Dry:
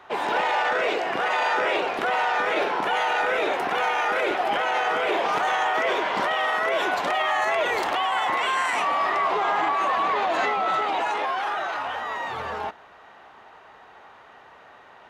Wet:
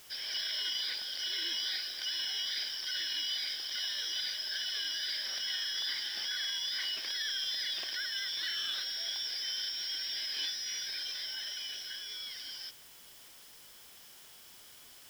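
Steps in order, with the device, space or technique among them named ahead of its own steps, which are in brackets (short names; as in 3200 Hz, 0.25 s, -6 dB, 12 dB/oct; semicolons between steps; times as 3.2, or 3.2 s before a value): split-band scrambled radio (four-band scrambler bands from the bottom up 4321; BPF 350–3200 Hz; white noise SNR 18 dB); gain -5.5 dB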